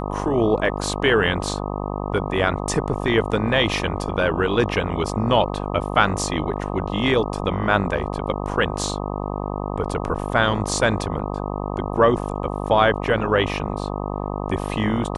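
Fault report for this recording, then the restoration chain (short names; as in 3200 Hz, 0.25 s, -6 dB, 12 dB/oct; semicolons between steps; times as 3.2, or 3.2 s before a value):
buzz 50 Hz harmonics 25 -27 dBFS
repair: de-hum 50 Hz, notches 25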